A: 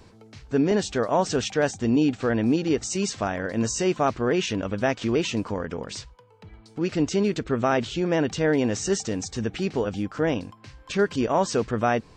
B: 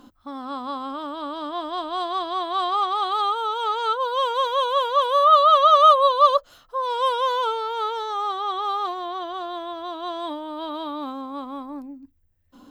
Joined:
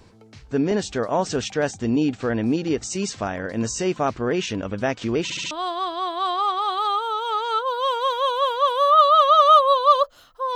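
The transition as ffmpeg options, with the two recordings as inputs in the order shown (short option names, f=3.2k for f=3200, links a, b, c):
-filter_complex "[0:a]apad=whole_dur=10.55,atrim=end=10.55,asplit=4[a][b][c][d];[a]atrim=end=5.302[e];[b]atrim=start=5.228:end=5.302[f];[c]atrim=start=5.228:end=5.302[g];[d]atrim=start=5.228:end=5.302[h];[1:a]atrim=start=1.848:end=6.89[i];[e][f]acrossfade=d=0.004:c1=hsin:c2=hsin[j];[j][g]acrossfade=d=0.004:c1=hsin:c2=hsin[k];[k][h]acrossfade=d=0.004:c1=hsin:c2=hsin[l];[l][i]acrossfade=d=0.004:c1=hsin:c2=hsin"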